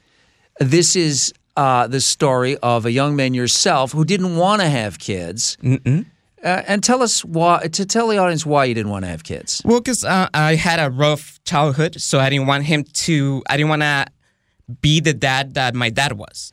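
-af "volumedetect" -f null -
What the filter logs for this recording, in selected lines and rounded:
mean_volume: -17.7 dB
max_volume: -2.5 dB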